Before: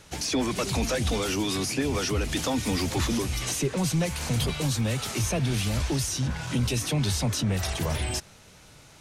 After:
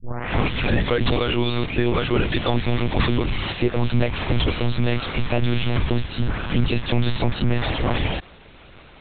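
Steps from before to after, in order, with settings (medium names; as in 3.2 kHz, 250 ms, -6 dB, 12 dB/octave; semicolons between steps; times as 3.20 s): tape start-up on the opening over 1.06 s; monotone LPC vocoder at 8 kHz 120 Hz; trim +7 dB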